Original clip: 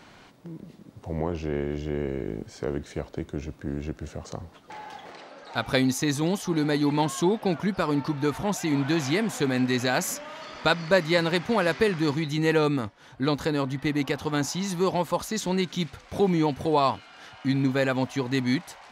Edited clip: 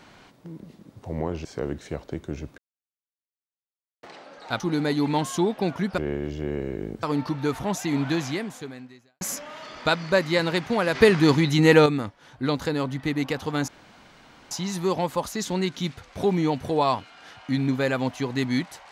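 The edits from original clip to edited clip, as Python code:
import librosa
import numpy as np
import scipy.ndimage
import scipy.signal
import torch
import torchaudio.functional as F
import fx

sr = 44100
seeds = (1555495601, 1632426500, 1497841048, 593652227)

y = fx.edit(x, sr, fx.move(start_s=1.45, length_s=1.05, to_s=7.82),
    fx.silence(start_s=3.63, length_s=1.45),
    fx.cut(start_s=5.65, length_s=0.79),
    fx.fade_out_span(start_s=8.91, length_s=1.09, curve='qua'),
    fx.clip_gain(start_s=11.74, length_s=0.91, db=7.0),
    fx.insert_room_tone(at_s=14.47, length_s=0.83), tone=tone)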